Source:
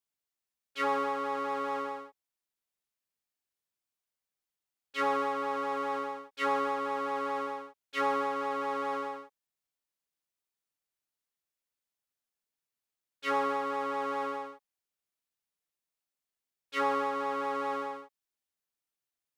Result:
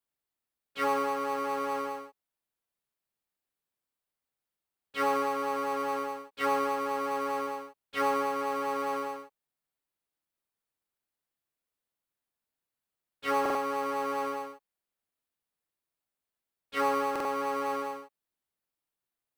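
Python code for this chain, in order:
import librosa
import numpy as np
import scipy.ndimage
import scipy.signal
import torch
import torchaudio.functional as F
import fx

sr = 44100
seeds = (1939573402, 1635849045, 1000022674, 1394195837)

p1 = fx.peak_eq(x, sr, hz=6000.0, db=-6.0, octaves=0.72)
p2 = fx.sample_hold(p1, sr, seeds[0], rate_hz=3500.0, jitter_pct=0)
p3 = p1 + (p2 * librosa.db_to_amplitude(-11.0))
y = fx.buffer_glitch(p3, sr, at_s=(13.41, 17.11), block=2048, repeats=2)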